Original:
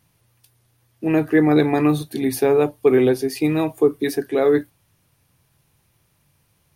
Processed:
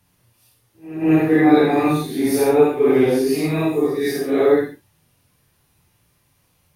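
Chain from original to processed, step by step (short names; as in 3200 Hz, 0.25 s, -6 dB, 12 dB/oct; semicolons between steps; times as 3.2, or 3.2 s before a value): phase scrambler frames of 0.2 s; pre-echo 0.185 s -17.5 dB; non-linear reverb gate 0.11 s flat, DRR 2 dB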